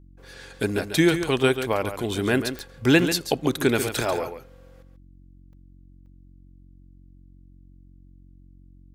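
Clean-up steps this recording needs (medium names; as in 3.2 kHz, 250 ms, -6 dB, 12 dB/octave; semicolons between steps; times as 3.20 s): de-click; de-hum 45.6 Hz, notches 7; interpolate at 0.78/1.73/2.15/3.12/5.53/6.06 s, 2.8 ms; inverse comb 140 ms -9.5 dB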